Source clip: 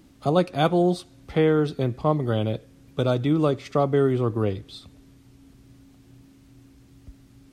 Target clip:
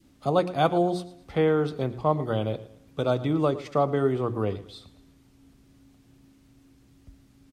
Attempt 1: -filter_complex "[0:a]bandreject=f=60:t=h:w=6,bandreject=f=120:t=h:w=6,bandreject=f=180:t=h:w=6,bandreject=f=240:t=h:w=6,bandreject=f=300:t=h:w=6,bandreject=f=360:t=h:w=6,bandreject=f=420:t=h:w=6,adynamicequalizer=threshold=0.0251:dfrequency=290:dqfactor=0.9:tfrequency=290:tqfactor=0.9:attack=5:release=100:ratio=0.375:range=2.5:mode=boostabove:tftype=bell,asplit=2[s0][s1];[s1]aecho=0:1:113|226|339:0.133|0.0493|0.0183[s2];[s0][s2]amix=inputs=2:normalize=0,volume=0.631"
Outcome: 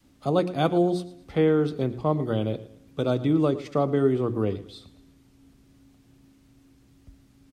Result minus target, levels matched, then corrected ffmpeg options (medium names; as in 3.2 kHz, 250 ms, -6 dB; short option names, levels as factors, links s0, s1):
1 kHz band -4.5 dB
-filter_complex "[0:a]bandreject=f=60:t=h:w=6,bandreject=f=120:t=h:w=6,bandreject=f=180:t=h:w=6,bandreject=f=240:t=h:w=6,bandreject=f=300:t=h:w=6,bandreject=f=360:t=h:w=6,bandreject=f=420:t=h:w=6,adynamicequalizer=threshold=0.0251:dfrequency=860:dqfactor=0.9:tfrequency=860:tqfactor=0.9:attack=5:release=100:ratio=0.375:range=2.5:mode=boostabove:tftype=bell,asplit=2[s0][s1];[s1]aecho=0:1:113|226|339:0.133|0.0493|0.0183[s2];[s0][s2]amix=inputs=2:normalize=0,volume=0.631"